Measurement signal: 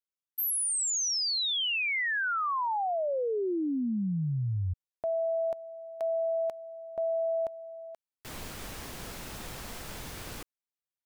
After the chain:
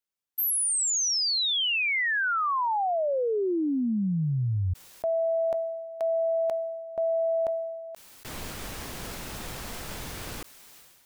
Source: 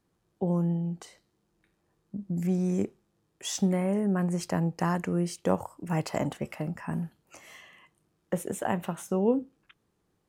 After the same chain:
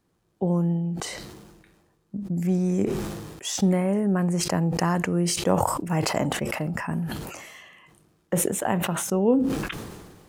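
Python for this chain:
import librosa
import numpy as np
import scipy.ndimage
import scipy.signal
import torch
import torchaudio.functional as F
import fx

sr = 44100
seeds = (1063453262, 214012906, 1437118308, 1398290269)

y = fx.sustainer(x, sr, db_per_s=38.0)
y = F.gain(torch.from_numpy(y), 3.5).numpy()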